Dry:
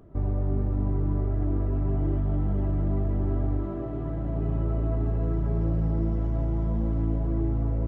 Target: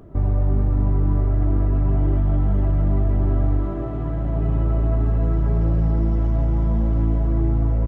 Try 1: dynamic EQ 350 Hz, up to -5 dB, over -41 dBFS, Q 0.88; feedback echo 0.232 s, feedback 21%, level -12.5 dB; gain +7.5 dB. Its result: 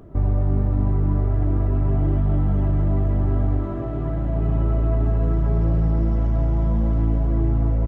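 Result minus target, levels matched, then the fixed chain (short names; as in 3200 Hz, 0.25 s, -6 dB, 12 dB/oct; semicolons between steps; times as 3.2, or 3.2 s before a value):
echo 72 ms late
dynamic EQ 350 Hz, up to -5 dB, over -41 dBFS, Q 0.88; feedback echo 0.16 s, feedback 21%, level -12.5 dB; gain +7.5 dB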